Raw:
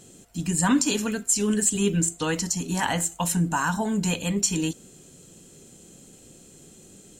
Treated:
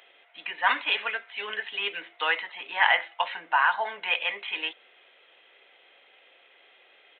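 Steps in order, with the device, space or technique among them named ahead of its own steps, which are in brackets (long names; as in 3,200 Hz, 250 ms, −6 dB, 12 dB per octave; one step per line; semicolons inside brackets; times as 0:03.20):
musical greeting card (downsampling to 8,000 Hz; high-pass filter 650 Hz 24 dB per octave; parametric band 2,100 Hz +11 dB 0.45 octaves)
level +3 dB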